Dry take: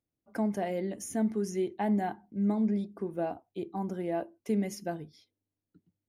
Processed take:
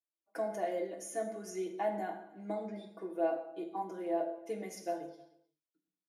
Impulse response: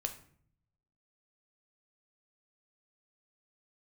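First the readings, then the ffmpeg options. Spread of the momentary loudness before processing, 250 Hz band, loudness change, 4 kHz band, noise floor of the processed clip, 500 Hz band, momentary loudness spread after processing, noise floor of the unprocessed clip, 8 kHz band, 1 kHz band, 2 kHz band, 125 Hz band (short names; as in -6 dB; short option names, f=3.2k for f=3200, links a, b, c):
9 LU, -12.0 dB, -5.5 dB, n/a, under -85 dBFS, -1.0 dB, 10 LU, under -85 dBFS, -4.0 dB, -1.5 dB, -3.5 dB, under -15 dB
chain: -filter_complex "[0:a]agate=range=-13dB:threshold=-52dB:ratio=16:detection=peak,highpass=400,equalizer=f=540:t=o:w=0.42:g=4.5,aecho=1:1:6.2:0.83,asplit=2[a][b];[b]adelay=309,volume=-23dB,highshelf=f=4k:g=-6.95[c];[a][c]amix=inputs=2:normalize=0[d];[1:a]atrim=start_sample=2205,atrim=end_sample=6174,asetrate=25137,aresample=44100[e];[d][e]afir=irnorm=-1:irlink=0,adynamicequalizer=threshold=0.00631:dfrequency=1700:dqfactor=0.7:tfrequency=1700:tqfactor=0.7:attack=5:release=100:ratio=0.375:range=3:mode=cutabove:tftype=highshelf,volume=-7.5dB"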